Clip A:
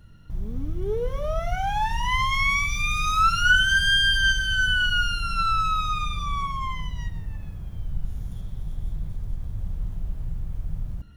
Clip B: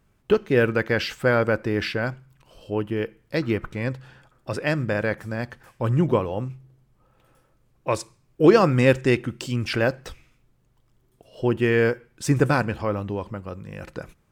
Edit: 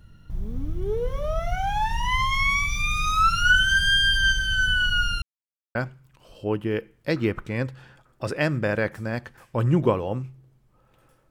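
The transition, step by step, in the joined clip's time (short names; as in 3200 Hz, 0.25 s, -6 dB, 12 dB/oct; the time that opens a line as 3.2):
clip A
5.22–5.75 mute
5.75 switch to clip B from 2.01 s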